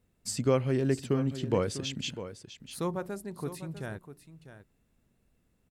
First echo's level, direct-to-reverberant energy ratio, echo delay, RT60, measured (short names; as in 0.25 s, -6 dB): -12.5 dB, none, 0.649 s, none